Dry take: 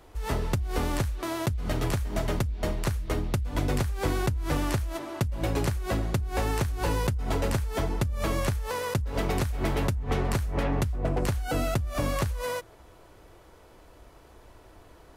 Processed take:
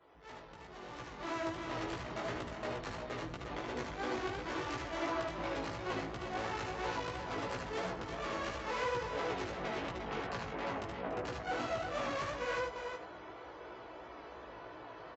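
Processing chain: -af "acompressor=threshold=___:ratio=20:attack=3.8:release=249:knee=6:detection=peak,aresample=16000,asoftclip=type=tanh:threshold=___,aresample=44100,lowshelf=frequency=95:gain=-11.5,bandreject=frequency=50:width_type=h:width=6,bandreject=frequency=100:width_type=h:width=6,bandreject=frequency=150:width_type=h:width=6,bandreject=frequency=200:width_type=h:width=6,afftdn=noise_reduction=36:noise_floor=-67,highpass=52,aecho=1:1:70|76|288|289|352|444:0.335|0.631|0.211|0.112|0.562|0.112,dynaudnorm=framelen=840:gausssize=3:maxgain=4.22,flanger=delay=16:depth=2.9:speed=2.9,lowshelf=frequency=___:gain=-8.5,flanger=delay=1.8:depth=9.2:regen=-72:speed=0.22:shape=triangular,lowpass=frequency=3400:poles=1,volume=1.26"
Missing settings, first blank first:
0.0355, 0.0126, 360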